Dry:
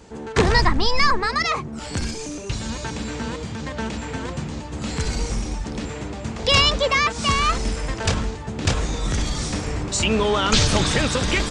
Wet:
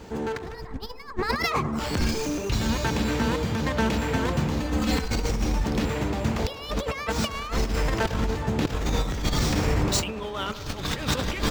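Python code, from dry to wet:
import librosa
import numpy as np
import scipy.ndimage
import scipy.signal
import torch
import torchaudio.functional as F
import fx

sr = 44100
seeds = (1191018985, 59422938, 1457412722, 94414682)

p1 = scipy.signal.medfilt(x, 5)
p2 = fx.comb(p1, sr, ms=3.9, depth=0.83, at=(4.6, 5.1))
p3 = fx.over_compress(p2, sr, threshold_db=-25.0, ratio=-0.5)
y = p3 + fx.echo_wet_bandpass(p3, sr, ms=101, feedback_pct=75, hz=710.0, wet_db=-13, dry=0)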